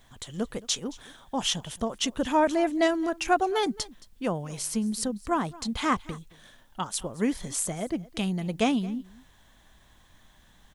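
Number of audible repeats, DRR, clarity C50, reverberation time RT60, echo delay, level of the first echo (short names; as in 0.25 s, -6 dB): 1, none, none, none, 0.221 s, -21.0 dB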